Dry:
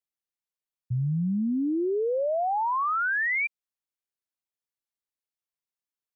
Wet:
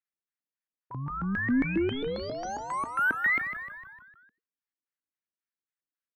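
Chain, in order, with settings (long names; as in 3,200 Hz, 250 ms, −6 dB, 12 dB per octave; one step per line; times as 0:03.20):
harmonic generator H 2 −24 dB, 5 −44 dB, 8 −8 dB, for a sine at −23 dBFS
auto-filter band-pass square 3.7 Hz 280–1,700 Hz
echo with shifted repeats 152 ms, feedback 55%, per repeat −82 Hz, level −9 dB
level +3.5 dB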